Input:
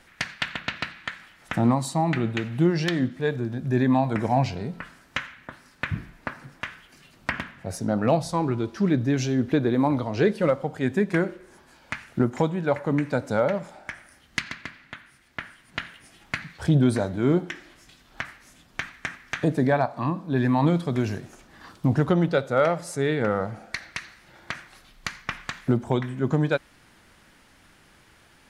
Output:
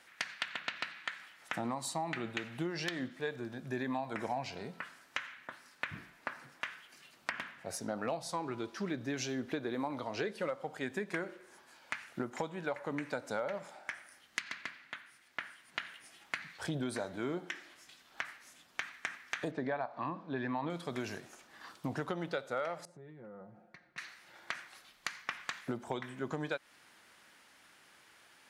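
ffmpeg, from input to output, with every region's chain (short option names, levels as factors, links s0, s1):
-filter_complex "[0:a]asettb=1/sr,asplit=3[s0][s1][s2];[s0]atrim=end=19.514[s3];[s1]atrim=start=19.51:end=20.7,asetpts=PTS-STARTPTS,afade=t=in:d=0.004:c=qsin,afade=t=out:st=1.186:d=0.004:c=qsin,lowpass=4900,aemphasis=mode=reproduction:type=50fm[s4];[s2]atrim=start=20.696[s5];[s3][s4]acrossfade=d=0.004:c1=hsin:c2=qsin[s6];[s6][s5]acrossfade=d=0.004:c1=qsin:c2=hsin,asettb=1/sr,asplit=3[s7][s8][s9];[s7]atrim=end=22.854[s10];[s8]atrim=start=22.85:end=23.98,asetpts=PTS-STARTPTS,afade=t=in:d=0.004:c=qsin,afade=t=out:st=1.126:d=0.004:c=qsin,bandpass=f=110:t=q:w=0.63,aecho=1:1:5.6:0.63,atrim=end_sample=49833,acompressor=threshold=0.0158:ratio=6:attack=3.2:release=140:knee=1:detection=peak[s11];[s9]atrim=start=23.976[s12];[s10][s11]acrossfade=d=0.004:c1=hsin:c2=qsin[s13];[s13][s12]acrossfade=d=0.004:c1=qsin:c2=hsin,highpass=f=680:p=1,acompressor=threshold=0.0355:ratio=6,volume=0.668"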